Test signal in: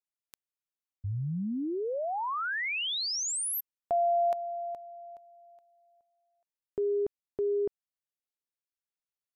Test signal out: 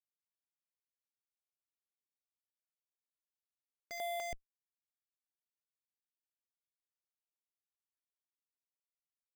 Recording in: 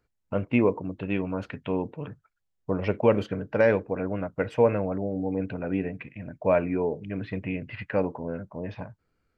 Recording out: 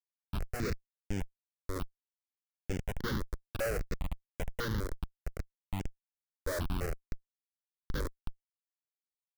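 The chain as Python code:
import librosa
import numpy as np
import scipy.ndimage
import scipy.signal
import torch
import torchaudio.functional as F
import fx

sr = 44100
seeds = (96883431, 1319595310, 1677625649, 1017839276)

p1 = fx.wiener(x, sr, points=41)
p2 = fx.low_shelf(p1, sr, hz=90.0, db=-9.5)
p3 = (np.mod(10.0 ** (11.0 / 20.0) * p2 + 1.0, 2.0) - 1.0) / 10.0 ** (11.0 / 20.0)
p4 = p3 + fx.echo_feedback(p3, sr, ms=71, feedback_pct=32, wet_db=-13.5, dry=0)
p5 = fx.schmitt(p4, sr, flips_db=-25.5)
p6 = fx.phaser_held(p5, sr, hz=5.0, low_hz=750.0, high_hz=4000.0)
y = F.gain(torch.from_numpy(p6), -1.0).numpy()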